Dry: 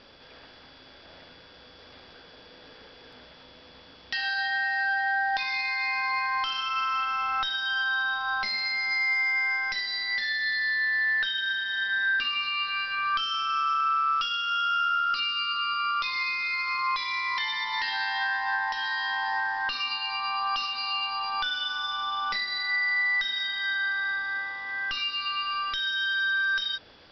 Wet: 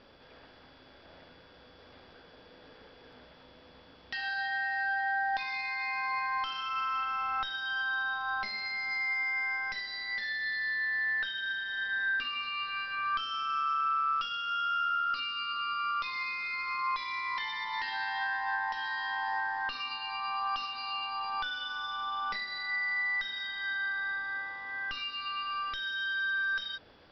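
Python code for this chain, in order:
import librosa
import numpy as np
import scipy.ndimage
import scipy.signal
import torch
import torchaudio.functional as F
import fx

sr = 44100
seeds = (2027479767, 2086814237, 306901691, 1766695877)

y = fx.high_shelf(x, sr, hz=2600.0, db=-9.5)
y = F.gain(torch.from_numpy(y), -2.5).numpy()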